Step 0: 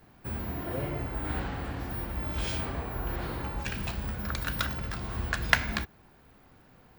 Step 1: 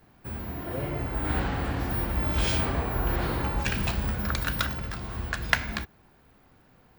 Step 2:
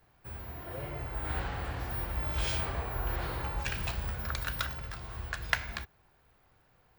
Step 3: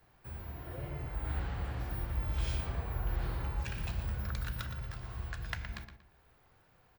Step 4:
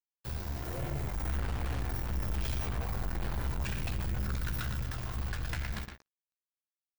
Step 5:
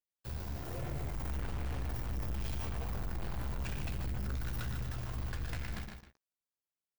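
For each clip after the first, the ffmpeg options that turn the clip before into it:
-af "dynaudnorm=f=200:g=11:m=7.5dB,volume=-1dB"
-af "equalizer=f=240:t=o:w=1:g=-11,volume=-5.5dB"
-filter_complex "[0:a]acrossover=split=280[a][b];[b]acompressor=threshold=-57dB:ratio=1.5[c];[a][c]amix=inputs=2:normalize=0,asplit=2[d][e];[e]adelay=117,lowpass=f=4.4k:p=1,volume=-8dB,asplit=2[f][g];[g]adelay=117,lowpass=f=4.4k:p=1,volume=0.29,asplit=2[h][i];[i]adelay=117,lowpass=f=4.4k:p=1,volume=0.29[j];[d][f][h][j]amix=inputs=4:normalize=0"
-filter_complex "[0:a]acrusher=bits=7:mix=0:aa=0.5,aeval=exprs='(tanh(112*val(0)+0.55)-tanh(0.55))/112':c=same,asplit=2[a][b];[b]adelay=15,volume=-10.5dB[c];[a][c]amix=inputs=2:normalize=0,volume=9dB"
-filter_complex "[0:a]asplit=2[a][b];[b]acrusher=samples=22:mix=1:aa=0.000001,volume=-10.5dB[c];[a][c]amix=inputs=2:normalize=0,aecho=1:1:150:0.376,volume=26.5dB,asoftclip=hard,volume=-26.5dB,volume=-5dB"

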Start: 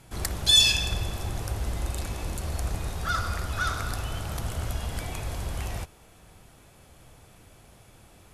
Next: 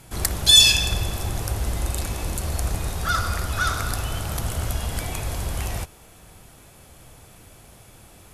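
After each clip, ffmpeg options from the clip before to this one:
-af "highshelf=f=8.2k:g=7,volume=4.5dB"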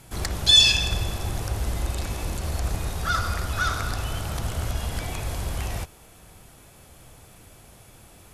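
-filter_complex "[0:a]acrossover=split=6700[a][b];[b]acompressor=threshold=-38dB:ratio=4:attack=1:release=60[c];[a][c]amix=inputs=2:normalize=0,volume=-1.5dB"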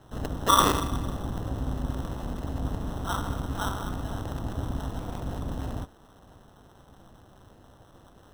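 -filter_complex "[0:a]tremolo=f=200:d=0.919,acrossover=split=440|1300[a][b][c];[c]acrusher=samples=19:mix=1:aa=0.000001[d];[a][b][d]amix=inputs=3:normalize=0"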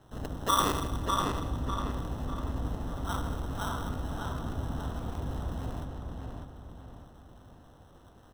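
-filter_complex "[0:a]asplit=2[a][b];[b]adelay=599,lowpass=f=4.3k:p=1,volume=-3.5dB,asplit=2[c][d];[d]adelay=599,lowpass=f=4.3k:p=1,volume=0.42,asplit=2[e][f];[f]adelay=599,lowpass=f=4.3k:p=1,volume=0.42,asplit=2[g][h];[h]adelay=599,lowpass=f=4.3k:p=1,volume=0.42,asplit=2[i][j];[j]adelay=599,lowpass=f=4.3k:p=1,volume=0.42[k];[a][c][e][g][i][k]amix=inputs=6:normalize=0,asplit=2[l][m];[m]asoftclip=type=hard:threshold=-21.5dB,volume=-8dB[n];[l][n]amix=inputs=2:normalize=0,volume=-7.5dB"

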